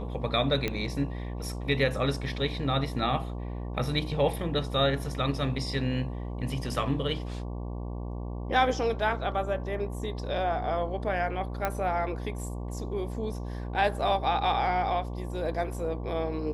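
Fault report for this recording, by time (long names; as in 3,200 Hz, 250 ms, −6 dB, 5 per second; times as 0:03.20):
mains buzz 60 Hz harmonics 19 −35 dBFS
0:00.68: click −15 dBFS
0:11.65: click −14 dBFS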